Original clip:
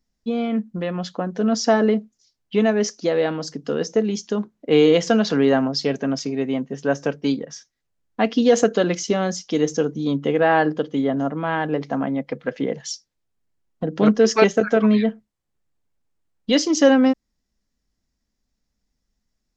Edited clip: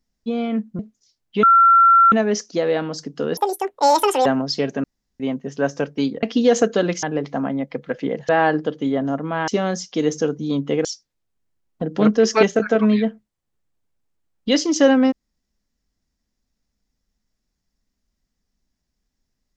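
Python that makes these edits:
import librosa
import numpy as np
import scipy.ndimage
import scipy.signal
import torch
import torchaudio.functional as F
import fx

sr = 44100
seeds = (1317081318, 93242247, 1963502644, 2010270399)

y = fx.edit(x, sr, fx.cut(start_s=0.79, length_s=1.18),
    fx.insert_tone(at_s=2.61, length_s=0.69, hz=1360.0, db=-8.5),
    fx.speed_span(start_s=3.86, length_s=1.66, speed=1.87),
    fx.room_tone_fill(start_s=6.1, length_s=0.36),
    fx.cut(start_s=7.49, length_s=0.75),
    fx.swap(start_s=9.04, length_s=1.37, other_s=11.6, other_length_s=1.26), tone=tone)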